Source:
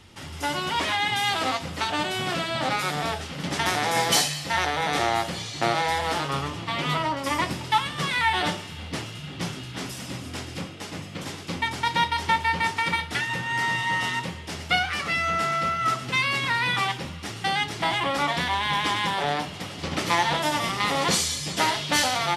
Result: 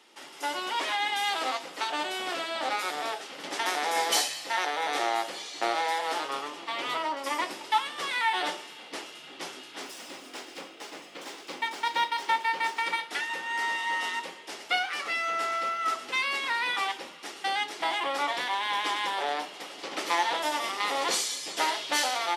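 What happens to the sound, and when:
0:09.82–0:12.86: running median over 3 samples
whole clip: high-pass filter 320 Hz 24 dB per octave; parametric band 840 Hz +2 dB 0.27 octaves; level −4.5 dB

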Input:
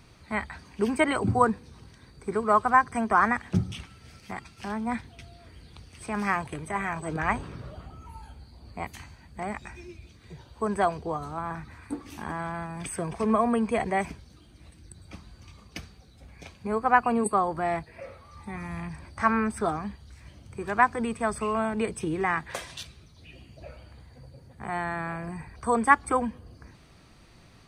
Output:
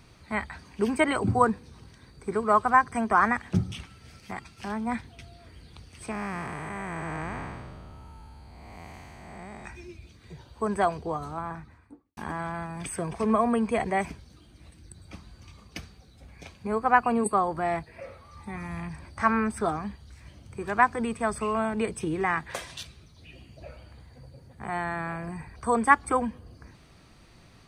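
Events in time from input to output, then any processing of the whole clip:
0:06.11–0:09.65: spectrum smeared in time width 410 ms
0:11.27–0:12.17: fade out and dull

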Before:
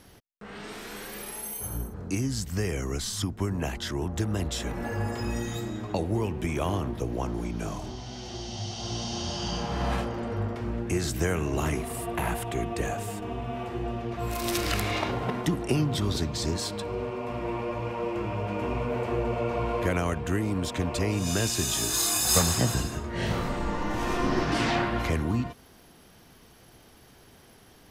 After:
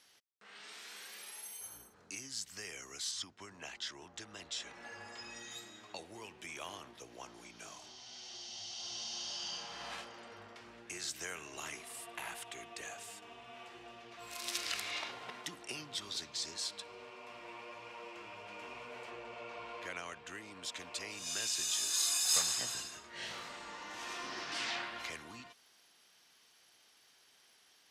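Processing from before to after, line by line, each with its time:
0:03.11–0:05.51: low-pass filter 6,900 Hz
0:19.10–0:20.63: high-shelf EQ 8,700 Hz −11.5 dB
whole clip: Bessel low-pass filter 4,300 Hz, order 2; first difference; level +3 dB

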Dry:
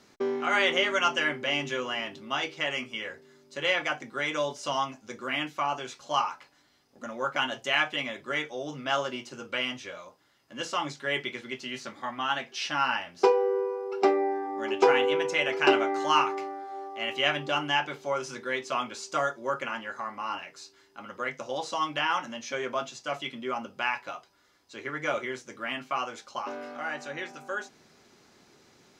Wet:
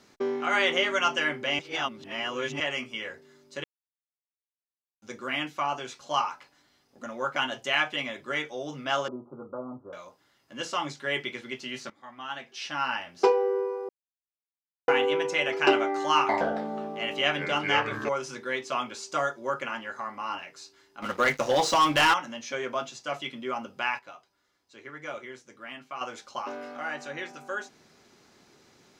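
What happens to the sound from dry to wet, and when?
0:01.59–0:02.60: reverse
0:03.64–0:05.02: silence
0:09.08–0:09.93: Butterworth low-pass 1,300 Hz 96 dB per octave
0:11.90–0:13.25: fade in, from −16 dB
0:13.89–0:14.88: silence
0:16.17–0:18.09: delay with pitch and tempo change per echo 117 ms, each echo −5 semitones, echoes 2
0:21.02–0:22.14: leveller curve on the samples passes 3
0:23.99–0:26.01: clip gain −8 dB

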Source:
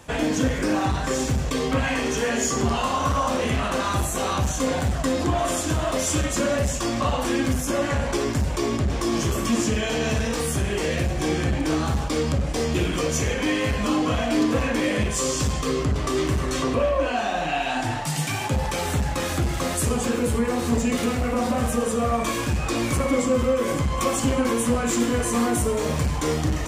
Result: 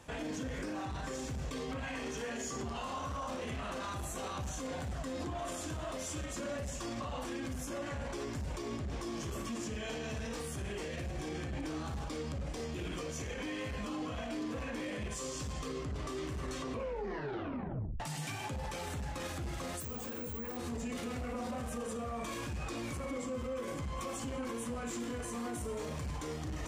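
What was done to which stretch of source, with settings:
0:16.73: tape stop 1.27 s
0:19.80–0:20.57: bad sample-rate conversion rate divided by 2×, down filtered, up zero stuff
whole clip: high-shelf EQ 11,000 Hz −5 dB; brickwall limiter −23 dBFS; level −8.5 dB

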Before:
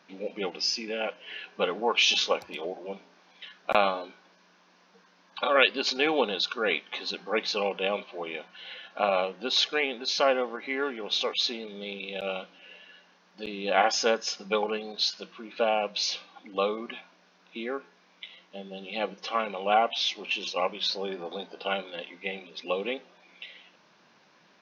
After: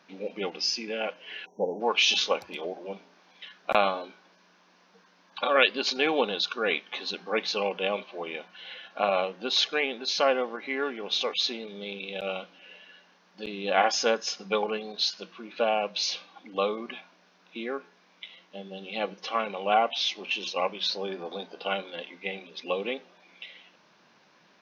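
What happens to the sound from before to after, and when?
0:01.46–0:01.81: time-frequency box erased 1,000–5,500 Hz

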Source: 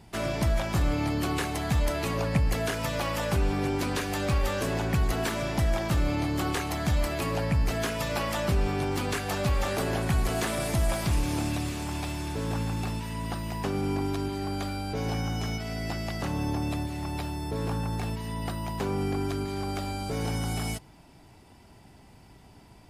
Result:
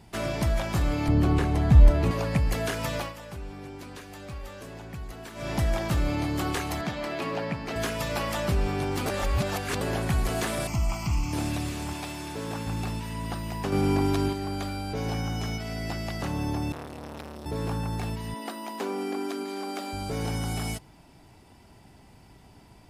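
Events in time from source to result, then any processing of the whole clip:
0:01.08–0:02.11: spectral tilt −3 dB per octave
0:02.96–0:05.52: duck −13 dB, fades 0.18 s
0:06.81–0:07.76: three-way crossover with the lows and the highs turned down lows −23 dB, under 150 Hz, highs −14 dB, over 5,200 Hz
0:09.06–0:09.81: reverse
0:10.67–0:11.33: phaser with its sweep stopped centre 2,500 Hz, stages 8
0:11.93–0:12.67: high-pass filter 210 Hz 6 dB per octave
0:13.72–0:14.33: clip gain +5 dB
0:16.72–0:17.46: saturating transformer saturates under 1,200 Hz
0:18.34–0:19.93: linear-phase brick-wall high-pass 200 Hz

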